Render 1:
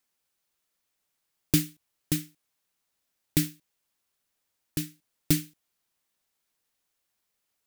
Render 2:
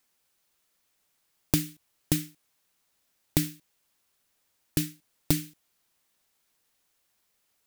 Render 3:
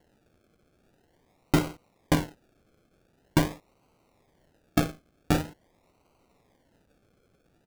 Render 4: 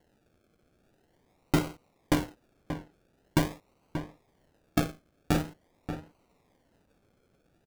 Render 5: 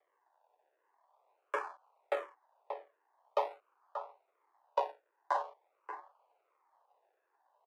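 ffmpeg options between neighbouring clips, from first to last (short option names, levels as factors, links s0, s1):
-af "acompressor=threshold=0.0447:ratio=5,volume=2"
-af "tiltshelf=f=970:g=-4.5,aresample=16000,asoftclip=type=tanh:threshold=0.112,aresample=44100,acrusher=samples=36:mix=1:aa=0.000001:lfo=1:lforange=21.6:lforate=0.45,volume=2.66"
-filter_complex "[0:a]asplit=2[s0][s1];[s1]adelay=583.1,volume=0.355,highshelf=f=4000:g=-13.1[s2];[s0][s2]amix=inputs=2:normalize=0,volume=0.75"
-filter_complex "[0:a]bandpass=f=700:t=q:w=1.5:csg=0,afreqshift=270,asplit=2[s0][s1];[s1]afreqshift=-1.4[s2];[s0][s2]amix=inputs=2:normalize=1,volume=1.5"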